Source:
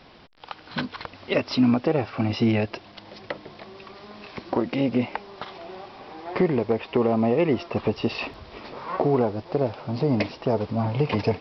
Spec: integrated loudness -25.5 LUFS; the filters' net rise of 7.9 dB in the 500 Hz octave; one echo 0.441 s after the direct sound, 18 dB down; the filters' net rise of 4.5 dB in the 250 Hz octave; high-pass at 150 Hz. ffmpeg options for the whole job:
-af "highpass=150,equalizer=f=250:t=o:g=3.5,equalizer=f=500:t=o:g=8.5,aecho=1:1:441:0.126,volume=-6.5dB"

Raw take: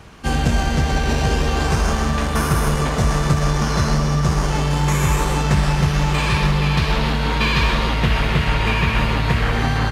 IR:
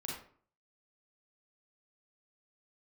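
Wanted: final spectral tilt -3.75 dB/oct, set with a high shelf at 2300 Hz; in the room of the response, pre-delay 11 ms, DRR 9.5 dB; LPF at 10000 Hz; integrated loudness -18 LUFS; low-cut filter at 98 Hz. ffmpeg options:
-filter_complex "[0:a]highpass=98,lowpass=10k,highshelf=f=2.3k:g=7.5,asplit=2[a][b];[1:a]atrim=start_sample=2205,adelay=11[c];[b][c]afir=irnorm=-1:irlink=0,volume=-9.5dB[d];[a][d]amix=inputs=2:normalize=0"

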